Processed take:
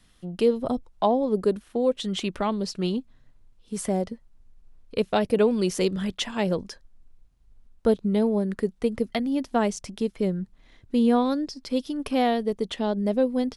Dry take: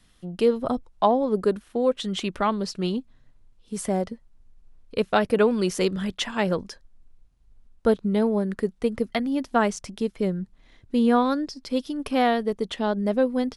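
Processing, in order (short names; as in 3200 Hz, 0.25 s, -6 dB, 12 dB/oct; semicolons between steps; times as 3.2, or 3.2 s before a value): dynamic EQ 1400 Hz, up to -8 dB, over -39 dBFS, Q 1.2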